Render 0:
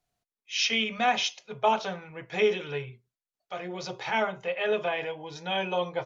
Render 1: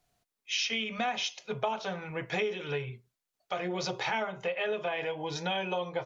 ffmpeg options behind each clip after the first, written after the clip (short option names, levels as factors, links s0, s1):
-af "acompressor=threshold=0.0158:ratio=6,volume=2.11"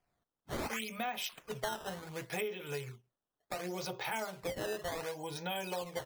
-af "acrusher=samples=11:mix=1:aa=0.000001:lfo=1:lforange=17.6:lforate=0.69,volume=0.501"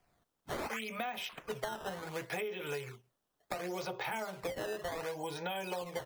-filter_complex "[0:a]acrossover=split=330|2800[s0][s1][s2];[s0]acompressor=threshold=0.00141:ratio=4[s3];[s1]acompressor=threshold=0.00562:ratio=4[s4];[s2]acompressor=threshold=0.00126:ratio=4[s5];[s3][s4][s5]amix=inputs=3:normalize=0,volume=2.37"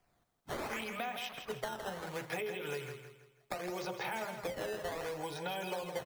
-af "aecho=1:1:163|326|489|652:0.398|0.151|0.0575|0.0218,volume=0.891"